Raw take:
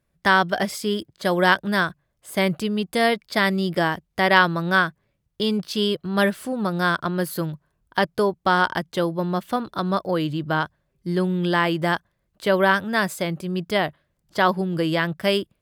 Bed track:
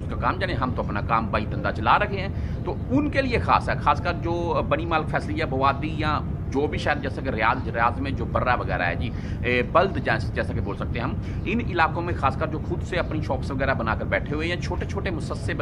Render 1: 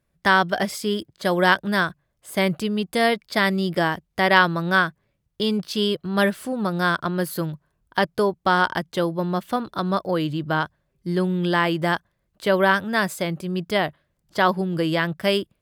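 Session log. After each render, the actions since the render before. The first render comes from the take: no audible change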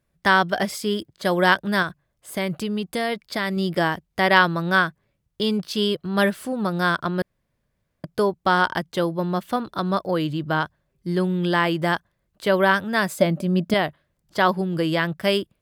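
1.82–3.57 s: compression 2.5:1, threshold -22 dBFS; 7.22–8.04 s: room tone; 13.18–13.74 s: small resonant body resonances 240/590 Hz, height 14 dB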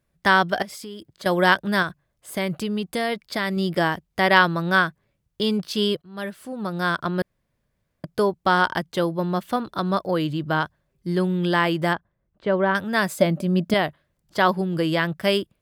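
0.62–1.26 s: compression 4:1, threshold -35 dBFS; 6.02–7.15 s: fade in, from -20.5 dB; 11.93–12.75 s: tape spacing loss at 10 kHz 37 dB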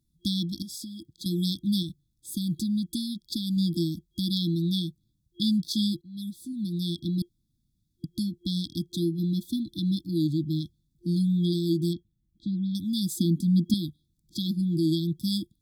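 FFT band-reject 350–3300 Hz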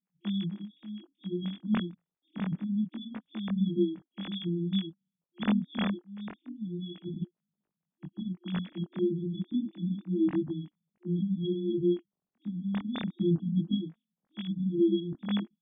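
formants replaced by sine waves; chorus voices 2, 0.27 Hz, delay 22 ms, depth 3.1 ms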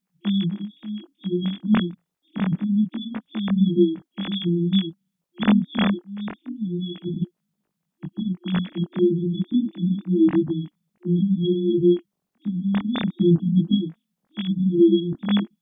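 trim +9.5 dB

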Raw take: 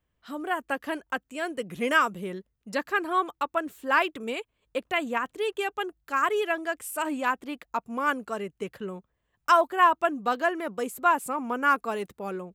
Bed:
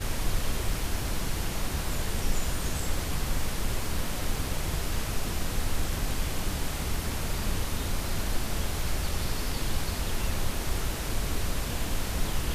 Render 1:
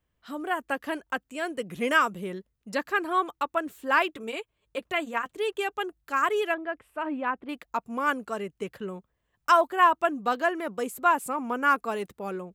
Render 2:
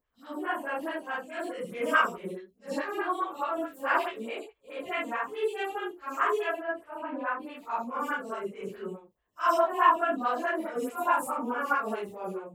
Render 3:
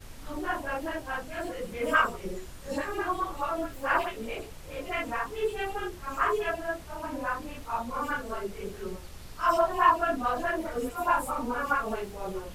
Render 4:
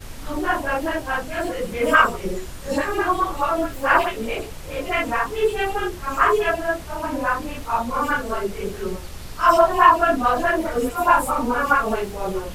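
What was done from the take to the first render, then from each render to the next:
4.08–5.37 s: comb of notches 250 Hz; 6.54–7.49 s: distance through air 480 m
phase randomisation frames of 200 ms; lamp-driven phase shifter 4.7 Hz
add bed -15.5 dB
trim +9.5 dB; peak limiter -2 dBFS, peak gain reduction 2 dB

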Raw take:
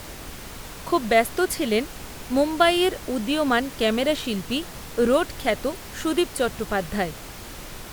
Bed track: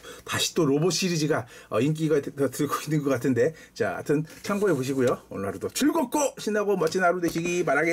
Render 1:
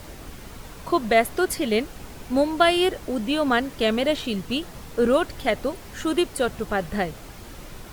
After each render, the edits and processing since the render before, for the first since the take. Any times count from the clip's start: noise reduction 6 dB, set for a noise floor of -39 dBFS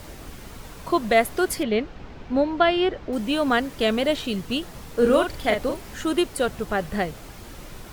1.63–3.13 s: distance through air 200 m; 4.94–5.97 s: doubling 42 ms -5 dB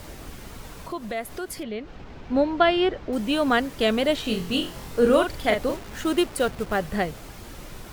0.82–2.23 s: compression 2:1, threshold -36 dBFS; 4.23–5.00 s: flutter echo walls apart 3.9 m, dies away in 0.33 s; 5.69–6.79 s: send-on-delta sampling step -36.5 dBFS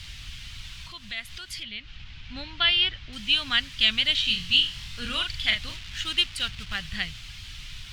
FFT filter 110 Hz 0 dB, 460 Hz -30 dB, 3.1 kHz +11 dB, 4.7 kHz +6 dB, 14 kHz -14 dB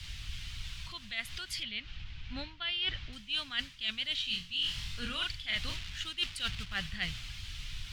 reverse; compression 12:1, threshold -31 dBFS, peak gain reduction 17 dB; reverse; three bands expanded up and down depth 40%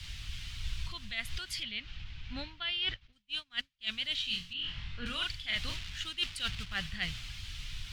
0.62–1.39 s: bass shelf 110 Hz +9 dB; 2.94–3.87 s: upward expansion 2.5:1, over -52 dBFS; 4.53–5.06 s: low-pass 2.5 kHz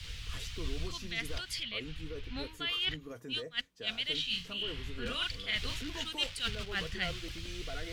add bed track -21.5 dB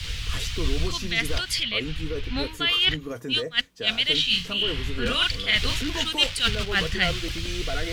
trim +12 dB

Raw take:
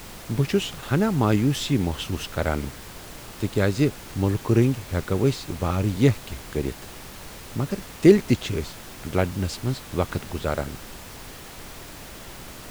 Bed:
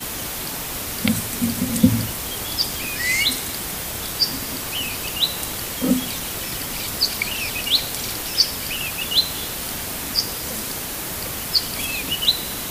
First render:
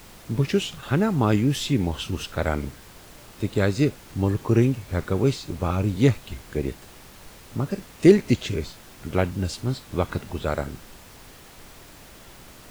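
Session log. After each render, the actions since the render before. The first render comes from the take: noise print and reduce 6 dB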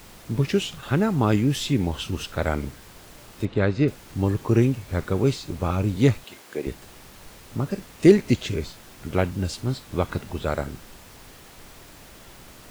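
3.45–3.88 s: low-pass 3.1 kHz; 6.24–6.67 s: high-pass 320 Hz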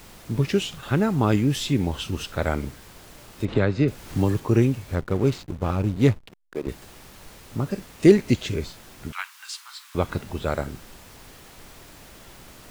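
3.48–4.40 s: three bands compressed up and down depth 70%; 4.95–6.69 s: hysteresis with a dead band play -30.5 dBFS; 9.12–9.95 s: steep high-pass 1 kHz 48 dB/octave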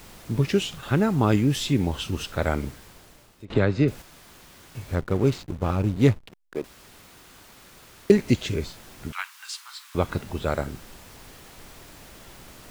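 2.69–3.50 s: fade out, to -20.5 dB; 4.02–4.75 s: room tone; 6.64–8.10 s: room tone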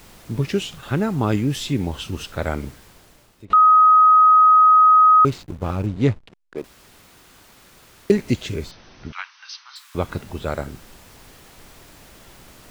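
3.53–5.25 s: bleep 1.26 kHz -8.5 dBFS; 5.86–6.58 s: distance through air 59 m; 8.71–9.76 s: brick-wall FIR low-pass 6.3 kHz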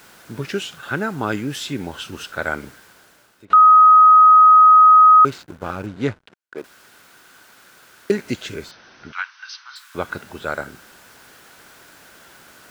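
high-pass 320 Hz 6 dB/octave; peaking EQ 1.5 kHz +10.5 dB 0.3 oct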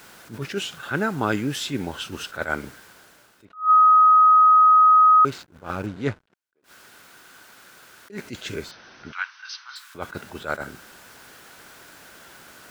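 compression 6:1, threshold -12 dBFS, peak gain reduction 4.5 dB; attacks held to a fixed rise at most 210 dB/s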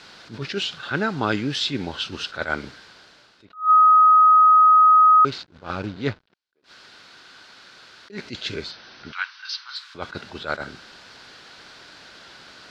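resonant low-pass 4.4 kHz, resonance Q 2.7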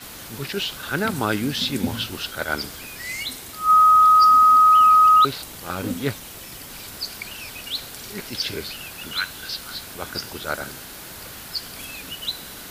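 add bed -10.5 dB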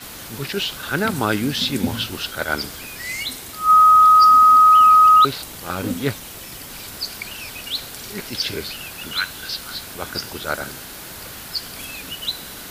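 trim +2.5 dB

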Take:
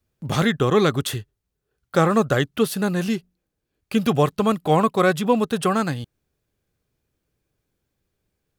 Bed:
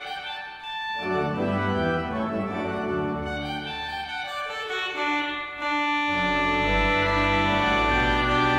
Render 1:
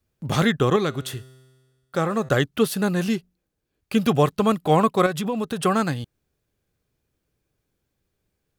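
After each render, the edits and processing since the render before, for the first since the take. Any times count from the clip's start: 0.76–2.29 s: feedback comb 130 Hz, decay 1.5 s, mix 50%; 5.06–5.64 s: compression 4:1, threshold -22 dBFS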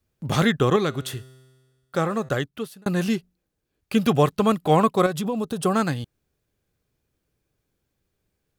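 2.00–2.86 s: fade out; 4.91–5.73 s: peaking EQ 2 kHz -2.5 dB -> -11.5 dB 1.3 oct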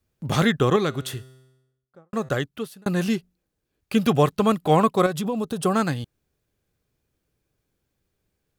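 1.15–2.13 s: studio fade out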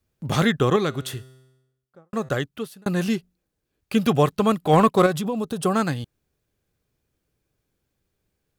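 4.73–5.18 s: waveshaping leveller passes 1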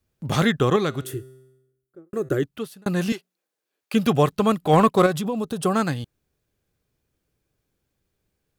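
1.04–2.43 s: FFT filter 150 Hz 0 dB, 230 Hz -6 dB, 330 Hz +14 dB, 520 Hz -2 dB, 940 Hz -13 dB, 1.4 kHz -4 dB, 4.1 kHz -11 dB, 11 kHz +2 dB; 3.12–3.94 s: high-pass 500 Hz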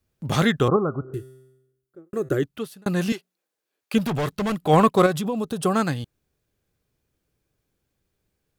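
0.68–1.14 s: steep low-pass 1.4 kHz 96 dB/octave; 3.98–4.66 s: hard clipper -22 dBFS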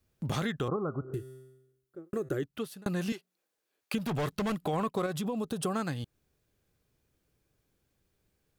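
peak limiter -12 dBFS, peak gain reduction 6 dB; compression 3:1, threshold -32 dBFS, peak gain reduction 12 dB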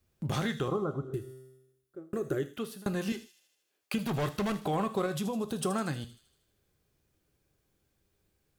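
feedback echo behind a high-pass 78 ms, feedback 61%, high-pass 4.7 kHz, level -9 dB; gated-style reverb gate 160 ms falling, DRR 9.5 dB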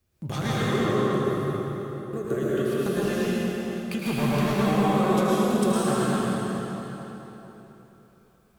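feedback echo behind a low-pass 218 ms, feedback 53%, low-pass 2.9 kHz, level -7 dB; plate-style reverb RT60 3.5 s, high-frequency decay 0.8×, pre-delay 95 ms, DRR -7.5 dB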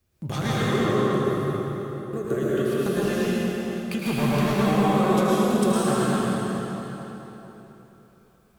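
trim +1.5 dB

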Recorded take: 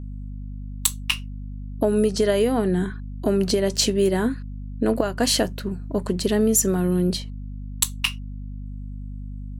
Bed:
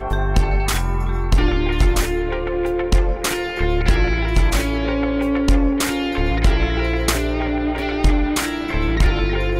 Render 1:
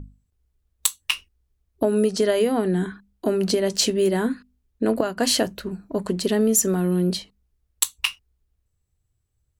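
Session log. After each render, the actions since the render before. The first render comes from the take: hum notches 50/100/150/200/250 Hz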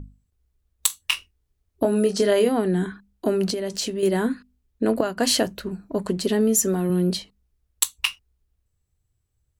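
0.87–2.49 s: doubling 25 ms -7 dB; 3.50–4.03 s: compression 2:1, threshold -28 dBFS; 6.17–6.90 s: comb of notches 160 Hz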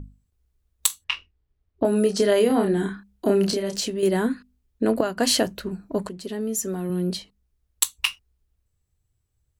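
1.04–1.85 s: distance through air 210 m; 2.47–3.81 s: doubling 30 ms -4 dB; 6.09–7.85 s: fade in, from -12.5 dB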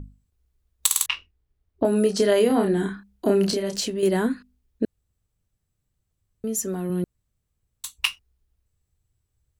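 0.86 s: stutter in place 0.05 s, 4 plays; 4.85–6.44 s: room tone; 7.04–7.84 s: room tone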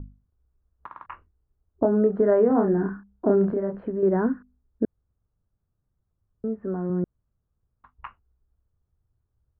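steep low-pass 1.5 kHz 36 dB/octave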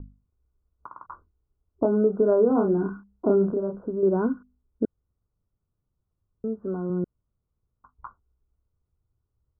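rippled Chebyshev low-pass 1.5 kHz, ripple 3 dB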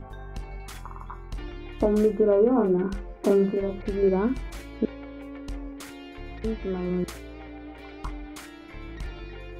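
add bed -20.5 dB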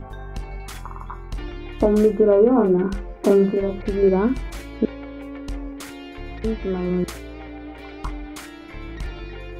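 trim +5 dB

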